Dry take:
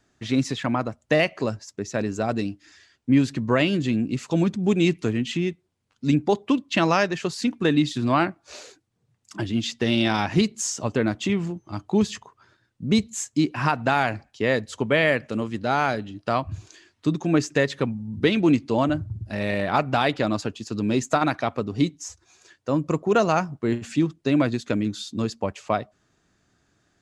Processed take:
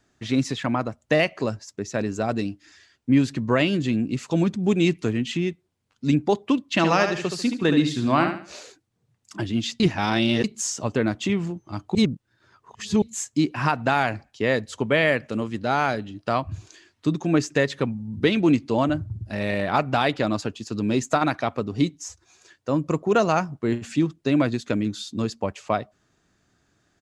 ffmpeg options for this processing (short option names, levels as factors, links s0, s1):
-filter_complex "[0:a]asplit=3[s0][s1][s2];[s0]afade=t=out:st=6.75:d=0.02[s3];[s1]aecho=1:1:72|144|216|288:0.447|0.143|0.0457|0.0146,afade=t=in:st=6.75:d=0.02,afade=t=out:st=8.58:d=0.02[s4];[s2]afade=t=in:st=8.58:d=0.02[s5];[s3][s4][s5]amix=inputs=3:normalize=0,asplit=5[s6][s7][s8][s9][s10];[s6]atrim=end=9.802[s11];[s7]atrim=start=9.798:end=10.442,asetpts=PTS-STARTPTS,areverse[s12];[s8]atrim=start=10.438:end=11.952[s13];[s9]atrim=start=11.948:end=13.022,asetpts=PTS-STARTPTS,areverse[s14];[s10]atrim=start=13.018[s15];[s11][s12]acrossfade=d=0.004:c1=hsin:c2=hsin[s16];[s16][s13]acrossfade=d=0.004:c1=hsin:c2=hsin[s17];[s17][s14]acrossfade=d=0.004:c1=hsin:c2=hsin[s18];[s18][s15]acrossfade=d=0.004:c1=hsin:c2=hsin"